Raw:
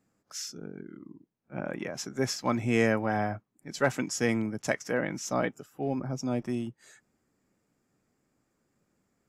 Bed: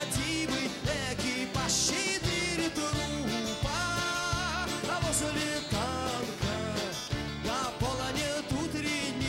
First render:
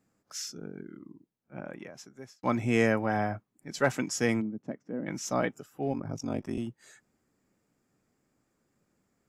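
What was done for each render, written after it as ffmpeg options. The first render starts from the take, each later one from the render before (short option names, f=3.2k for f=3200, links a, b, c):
-filter_complex "[0:a]asplit=3[a][b][c];[a]afade=t=out:st=4.4:d=0.02[d];[b]bandpass=f=240:t=q:w=1.8,afade=t=in:st=4.4:d=0.02,afade=t=out:st=5.06:d=0.02[e];[c]afade=t=in:st=5.06:d=0.02[f];[d][e][f]amix=inputs=3:normalize=0,asettb=1/sr,asplit=3[g][h][i];[g]atrim=end=5.924[j];[h]atrim=start=5.92:end=6.58,asetpts=PTS-STARTPTS,afade=t=in:d=0.004:c=qsin,afade=t=out:st=0.656:d=0.004:c=qsin,aeval=exprs='val(0)*sin(2*PI*24*n/s)':c=same[k];[i]atrim=start=6.576[l];[j][k]acrossfade=d=0.004:c1=hsin:c2=qsin[m];[m][l]acrossfade=d=0.004:c1=qsin:c2=hsin,asplit=2[n][o];[n]atrim=end=2.43,asetpts=PTS-STARTPTS,afade=t=out:st=0.86:d=1.57[p];[o]atrim=start=2.43,asetpts=PTS-STARTPTS,afade=t=in:d=0.004:c=hsin[q];[p][q]concat=n=2:v=0:a=1"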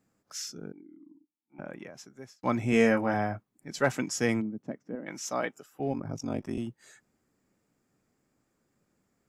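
-filter_complex "[0:a]asettb=1/sr,asplit=3[a][b][c];[a]atrim=end=0.724[d];[b]atrim=start=0.72:end=1.59,asetpts=PTS-STARTPTS,afade=t=in:d=0.004:c=qsin,afade=t=out:st=0.866:d=0.004:c=qsin,asplit=3[e][f][g];[e]bandpass=f=300:t=q:w=8,volume=0dB[h];[f]bandpass=f=870:t=q:w=8,volume=-6dB[i];[g]bandpass=f=2.24k:t=q:w=8,volume=-9dB[j];[h][i][j]amix=inputs=3:normalize=0[k];[c]atrim=start=1.586[l];[d][k]acrossfade=d=0.004:c1=hsin:c2=qsin[m];[m][l]acrossfade=d=0.004:c1=qsin:c2=hsin,asettb=1/sr,asplit=3[n][o][p];[n]atrim=end=2.704[q];[o]atrim=start=2.7:end=3.14,asetpts=PTS-STARTPTS,afade=t=in:d=0.004:c=qsin,afade=t=out:st=0.436:d=0.004:c=qsin,asplit=2[r][s];[s]adelay=22,volume=-5dB[t];[r][t]amix=inputs=2:normalize=0,atrim=end_sample=19404[u];[p]atrim=start=3.136[v];[q][u]acrossfade=d=0.004:c1=hsin:c2=qsin[w];[w][v]acrossfade=d=0.004:c1=qsin:c2=hsin,asettb=1/sr,asplit=3[x][y][z];[x]atrim=end=4.954[aa];[y]atrim=start=4.95:end=5.8,asetpts=PTS-STARTPTS,afade=t=in:d=0.004:c=qsin,afade=t=out:st=0.846:d=0.004:c=qsin,highpass=f=480:p=1[ab];[z]atrim=start=5.796[ac];[aa][ab]acrossfade=d=0.004:c1=hsin:c2=qsin[ad];[ad][ac]acrossfade=d=0.004:c1=qsin:c2=hsin"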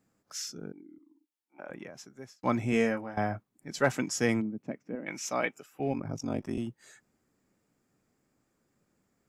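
-filter_complex "[0:a]asettb=1/sr,asplit=3[a][b][c];[a]atrim=end=0.984[d];[b]atrim=start=0.98:end=1.7,asetpts=PTS-STARTPTS,afade=t=in:d=0.004:c=qsin,afade=t=out:st=0.716:d=0.004:c=qsin,highpass=450[e];[c]atrim=start=1.696[f];[d][e]acrossfade=d=0.004:c1=hsin:c2=qsin[g];[g][f]acrossfade=d=0.004:c1=qsin:c2=hsin,asettb=1/sr,asplit=3[h][i][j];[h]atrim=end=4.574[k];[i]atrim=start=4.57:end=6.08,asetpts=PTS-STARTPTS,afade=t=in:d=0.004:c=qsin,afade=t=out:st=1.506:d=0.004:c=qsin,equalizer=f=2.4k:w=3.7:g=9[l];[j]atrim=start=6.076[m];[k][l]acrossfade=d=0.004:c1=hsin:c2=qsin[n];[n][m]acrossfade=d=0.004:c1=qsin:c2=hsin,asplit=2[o][p];[o]atrim=end=3.17,asetpts=PTS-STARTPTS,afade=t=out:st=2.55:d=0.62:silence=0.125893[q];[p]atrim=start=3.17,asetpts=PTS-STARTPTS,afade=t=in:d=0.004:c=hsin:silence=0.125893[r];[q][r]concat=n=2:v=0:a=1"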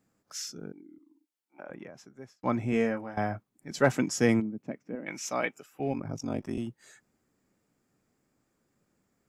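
-filter_complex "[0:a]asettb=1/sr,asplit=3[a][b][c];[a]atrim=end=1.634[d];[b]atrim=start=1.63:end=3,asetpts=PTS-STARTPTS,afade=t=in:d=0.004:c=qsin,afade=t=out:st=1.366:d=0.004:c=qsin,highshelf=f=2.7k:g=-8[e];[c]atrim=start=2.996[f];[d][e]acrossfade=d=0.004:c1=hsin:c2=qsin[g];[g][f]acrossfade=d=0.004:c1=qsin:c2=hsin,asettb=1/sr,asplit=3[h][i][j];[h]atrim=end=3.704[k];[i]atrim=start=3.7:end=4.4,asetpts=PTS-STARTPTS,afade=t=in:d=0.004:c=qsin,afade=t=out:st=0.696:d=0.004:c=qsin,equalizer=f=200:w=0.3:g=4.5[l];[j]atrim=start=4.396[m];[k][l]acrossfade=d=0.004:c1=hsin:c2=qsin[n];[n][m]acrossfade=d=0.004:c1=qsin:c2=hsin"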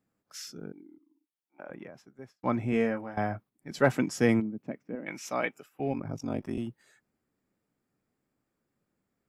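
-af "agate=range=-6dB:threshold=-51dB:ratio=16:detection=peak,equalizer=f=6.6k:w=1.6:g=-7"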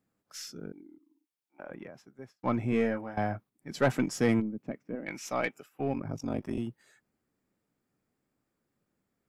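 -af "asoftclip=type=tanh:threshold=-15.5dB,aeval=exprs='0.168*(cos(1*acos(clip(val(0)/0.168,-1,1)))-cos(1*PI/2))+0.00596*(cos(6*acos(clip(val(0)/0.168,-1,1)))-cos(6*PI/2))':c=same"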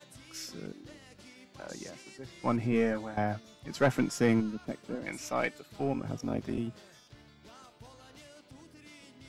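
-filter_complex "[1:a]volume=-21.5dB[a];[0:a][a]amix=inputs=2:normalize=0"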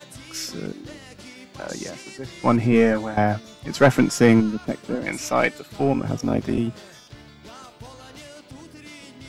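-af "volume=11dB"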